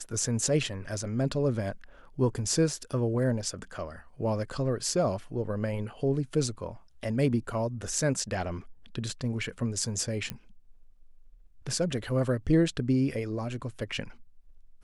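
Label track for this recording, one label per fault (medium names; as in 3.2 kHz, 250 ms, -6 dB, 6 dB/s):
10.300000	10.300000	pop -17 dBFS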